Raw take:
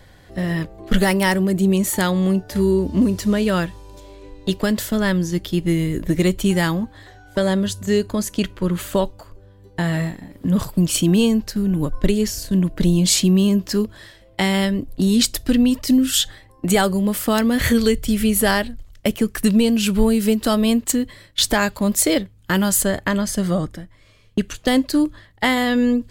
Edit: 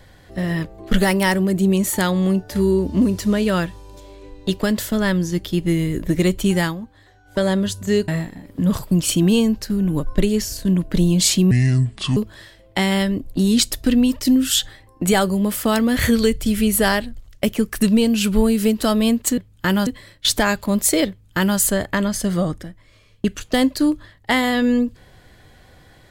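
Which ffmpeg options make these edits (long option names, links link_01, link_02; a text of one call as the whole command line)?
ffmpeg -i in.wav -filter_complex "[0:a]asplit=8[link_01][link_02][link_03][link_04][link_05][link_06][link_07][link_08];[link_01]atrim=end=6.75,asetpts=PTS-STARTPTS,afade=type=out:start_time=6.57:duration=0.18:curve=qsin:silence=0.375837[link_09];[link_02]atrim=start=6.75:end=7.24,asetpts=PTS-STARTPTS,volume=-8.5dB[link_10];[link_03]atrim=start=7.24:end=8.082,asetpts=PTS-STARTPTS,afade=type=in:duration=0.18:curve=qsin:silence=0.375837[link_11];[link_04]atrim=start=9.938:end=13.374[link_12];[link_05]atrim=start=13.37:end=13.79,asetpts=PTS-STARTPTS,asetrate=28224,aresample=44100[link_13];[link_06]atrim=start=13.786:end=21.002[link_14];[link_07]atrim=start=22.228:end=22.722[link_15];[link_08]atrim=start=20.998[link_16];[link_09][link_10][link_11]concat=n=3:v=0:a=1[link_17];[link_17][link_12]acrossfade=duration=0.004:curve1=hsin:curve2=hsin[link_18];[link_18][link_13]acrossfade=duration=0.004:curve1=hsin:curve2=hsin[link_19];[link_19][link_14]acrossfade=duration=0.004:curve1=hsin:curve2=hsin[link_20];[link_20][link_15]acrossfade=duration=0.004:curve1=hsin:curve2=hsin[link_21];[link_21][link_16]acrossfade=duration=0.004:curve1=hsin:curve2=hsin" out.wav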